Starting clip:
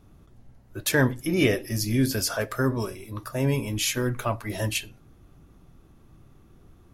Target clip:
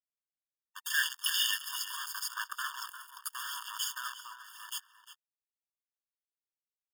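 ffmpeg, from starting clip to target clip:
-filter_complex "[0:a]aeval=exprs='if(lt(val(0),0),0.447*val(0),val(0))':c=same,asplit=3[a][b][c];[a]afade=t=out:st=2.93:d=0.02[d];[b]bass=f=250:g=-13,treble=f=4k:g=15,afade=t=in:st=2.93:d=0.02,afade=t=out:st=3.34:d=0.02[e];[c]afade=t=in:st=3.34:d=0.02[f];[d][e][f]amix=inputs=3:normalize=0,alimiter=limit=-20dB:level=0:latency=1:release=280,acrusher=bits=2:mode=log:mix=0:aa=0.000001,asplit=3[g][h][i];[g]afade=t=out:st=0.9:d=0.02[j];[h]highshelf=f=1.6k:t=q:w=3:g=10,afade=t=in:st=0.9:d=0.02,afade=t=out:st=1.69:d=0.02[k];[i]afade=t=in:st=1.69:d=0.02[l];[j][k][l]amix=inputs=3:normalize=0,acrusher=bits=4:mix=0:aa=0.5,asplit=3[m][n][o];[m]afade=t=out:st=4.14:d=0.02[p];[n]volume=32dB,asoftclip=hard,volume=-32dB,afade=t=in:st=4.14:d=0.02,afade=t=out:st=4.67:d=0.02[q];[o]afade=t=in:st=4.67:d=0.02[r];[p][q][r]amix=inputs=3:normalize=0,asplit=2[s][t];[t]adelay=349.9,volume=-11dB,highshelf=f=4k:g=-7.87[u];[s][u]amix=inputs=2:normalize=0,aphaser=in_gain=1:out_gain=1:delay=2.1:decay=0.28:speed=0.82:type=sinusoidal,afftfilt=real='re*eq(mod(floor(b*sr/1024/910),2),1)':imag='im*eq(mod(floor(b*sr/1024/910),2),1)':win_size=1024:overlap=0.75"

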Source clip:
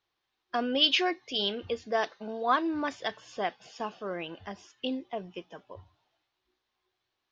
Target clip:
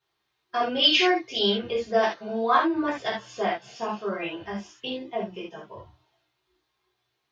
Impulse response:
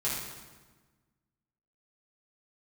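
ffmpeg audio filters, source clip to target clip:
-filter_complex "[0:a]asettb=1/sr,asplit=3[a][b][c];[a]atrim=end=2.574[d];[b]atrim=start=2.57:end=2.99,asetpts=PTS-STARTPTS,afade=t=in:d=0.004:c=qsin,afade=t=out:st=0.416:d=0.004:c=qsin,highshelf=f=4k:g=-9.5[e];[c]atrim=start=2.986[f];[d][e]acrossfade=d=0.004:c1=hsin:c2=qsin[g];[g][f]acrossfade=d=0.004:c1=qsin:c2=hsin[h];[1:a]atrim=start_sample=2205,afade=t=out:st=0.14:d=0.01,atrim=end_sample=6615[i];[h][i]afir=irnorm=-1:irlink=0"

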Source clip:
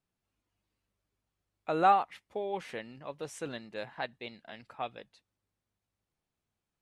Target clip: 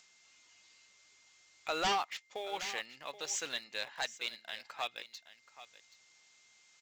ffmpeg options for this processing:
-filter_complex "[0:a]aderivative,acompressor=mode=upward:threshold=-56dB:ratio=2.5,aresample=16000,aeval=exprs='0.0335*sin(PI/2*3.16*val(0)/0.0335)':c=same,aresample=44100,aeval=exprs='val(0)+0.000398*sin(2*PI*2100*n/s)':c=same,asplit=2[a][b];[b]aeval=exprs='val(0)*gte(abs(val(0)),0.00668)':c=same,volume=-7.5dB[c];[a][c]amix=inputs=2:normalize=0,aecho=1:1:778:0.168"

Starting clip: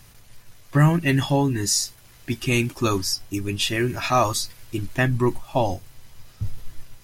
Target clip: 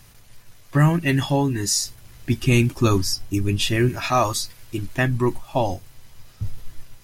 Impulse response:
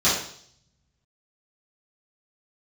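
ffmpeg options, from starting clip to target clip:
-filter_complex "[0:a]asettb=1/sr,asplit=3[a][b][c];[a]atrim=end=1.854[d];[b]atrim=start=1.85:end=3.89,asetpts=PTS-STARTPTS,afade=t=in:d=0.004:c=qsin,afade=t=out:st=2.036:d=0.004:c=qsin,lowshelf=f=250:g=8.5[e];[c]atrim=start=3.886[f];[d][e]acrossfade=d=0.004:c1=hsin:c2=qsin[g];[g][f]acrossfade=d=0.004:c1=qsin:c2=hsin"

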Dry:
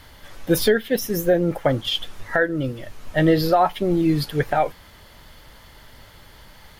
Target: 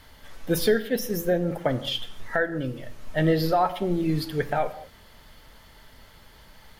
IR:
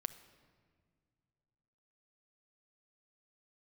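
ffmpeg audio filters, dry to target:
-filter_complex "[1:a]atrim=start_sample=2205,afade=t=out:st=0.36:d=0.01,atrim=end_sample=16317,asetrate=61740,aresample=44100[a];[0:a][a]afir=irnorm=-1:irlink=0"

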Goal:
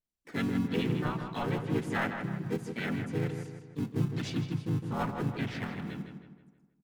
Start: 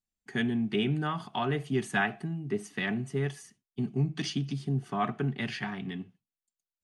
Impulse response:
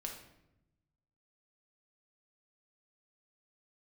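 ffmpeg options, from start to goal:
-filter_complex "[0:a]asplit=2[a][b];[b]acrusher=samples=37:mix=1:aa=0.000001,volume=-8dB[c];[a][c]amix=inputs=2:normalize=0,asplit=3[d][e][f];[e]asetrate=35002,aresample=44100,atempo=1.25992,volume=-2dB[g];[f]asetrate=52444,aresample=44100,atempo=0.840896,volume=-2dB[h];[d][g][h]amix=inputs=3:normalize=0,asplit=2[i][j];[j]adelay=159,lowpass=f=3.3k:p=1,volume=-7dB,asplit=2[k][l];[l]adelay=159,lowpass=f=3.3k:p=1,volume=0.47,asplit=2[m][n];[n]adelay=159,lowpass=f=3.3k:p=1,volume=0.47,asplit=2[o][p];[p]adelay=159,lowpass=f=3.3k:p=1,volume=0.47,asplit=2[q][r];[r]adelay=159,lowpass=f=3.3k:p=1,volume=0.47,asplit=2[s][t];[t]adelay=159,lowpass=f=3.3k:p=1,volume=0.47[u];[i][k][m][o][q][s][u]amix=inputs=7:normalize=0,adynamicequalizer=threshold=0.00562:dfrequency=3800:dqfactor=0.7:tfrequency=3800:tqfactor=0.7:attack=5:release=100:ratio=0.375:range=2.5:mode=cutabove:tftype=highshelf,volume=-8dB"

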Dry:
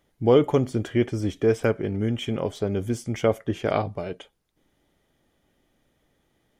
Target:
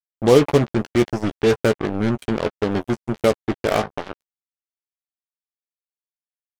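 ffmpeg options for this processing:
-filter_complex "[0:a]acrossover=split=4500[a][b];[b]acompressor=threshold=-51dB:ratio=4:attack=1:release=60[c];[a][c]amix=inputs=2:normalize=0,acrusher=bits=3:mix=0:aa=0.5,asplit=2[d][e];[e]adelay=14,volume=-10dB[f];[d][f]amix=inputs=2:normalize=0,volume=3.5dB"

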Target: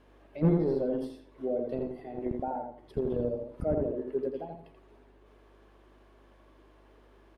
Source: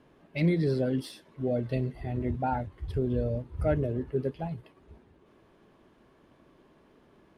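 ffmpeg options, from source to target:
-filter_complex "[0:a]acrossover=split=250|810[a][b][c];[a]acrusher=bits=3:mix=0:aa=0.5[d];[c]acompressor=threshold=-59dB:ratio=6[e];[d][b][e]amix=inputs=3:normalize=0,aeval=exprs='val(0)+0.000794*(sin(2*PI*50*n/s)+sin(2*PI*2*50*n/s)/2+sin(2*PI*3*50*n/s)/3+sin(2*PI*4*50*n/s)/4+sin(2*PI*5*50*n/s)/5)':c=same,asplit=2[f][g];[g]adelay=83,lowpass=f=2.7k:p=1,volume=-3.5dB,asplit=2[h][i];[i]adelay=83,lowpass=f=2.7k:p=1,volume=0.3,asplit=2[j][k];[k]adelay=83,lowpass=f=2.7k:p=1,volume=0.3,asplit=2[l][m];[m]adelay=83,lowpass=f=2.7k:p=1,volume=0.3[n];[f][h][j][l][n]amix=inputs=5:normalize=0"

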